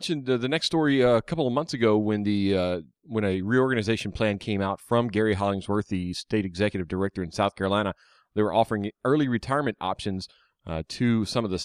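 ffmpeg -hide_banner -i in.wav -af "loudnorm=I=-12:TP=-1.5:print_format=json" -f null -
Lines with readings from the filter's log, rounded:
"input_i" : "-26.1",
"input_tp" : "-8.8",
"input_lra" : "3.0",
"input_thresh" : "-36.2",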